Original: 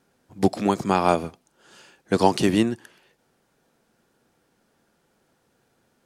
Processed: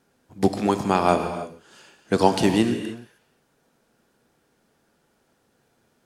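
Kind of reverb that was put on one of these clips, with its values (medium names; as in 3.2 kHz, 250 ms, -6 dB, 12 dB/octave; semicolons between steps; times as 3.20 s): gated-style reverb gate 340 ms flat, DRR 7.5 dB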